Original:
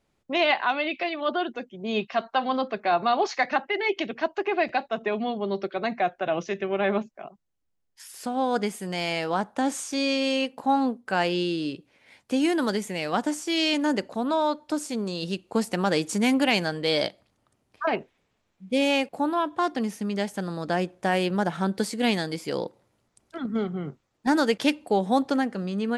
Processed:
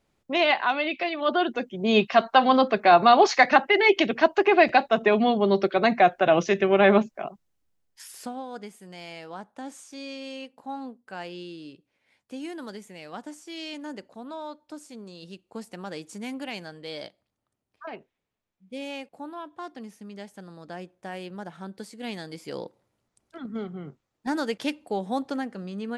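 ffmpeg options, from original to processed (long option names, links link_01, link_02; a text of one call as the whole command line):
ffmpeg -i in.wav -af "volume=14dB,afade=type=in:start_time=1.14:duration=0.66:silence=0.473151,afade=type=out:start_time=7.22:duration=0.9:silence=0.446684,afade=type=out:start_time=8.12:duration=0.31:silence=0.223872,afade=type=in:start_time=21.98:duration=0.57:silence=0.446684" out.wav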